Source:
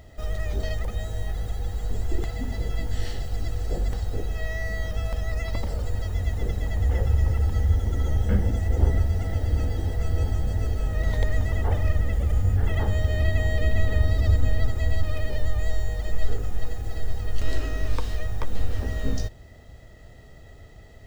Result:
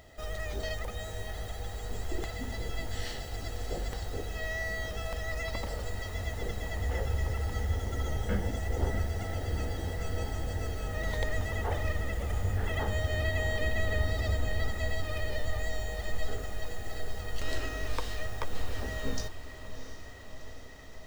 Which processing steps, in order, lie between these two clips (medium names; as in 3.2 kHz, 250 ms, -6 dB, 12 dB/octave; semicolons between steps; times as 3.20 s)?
bass shelf 320 Hz -10.5 dB; echo that smears into a reverb 709 ms, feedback 69%, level -12 dB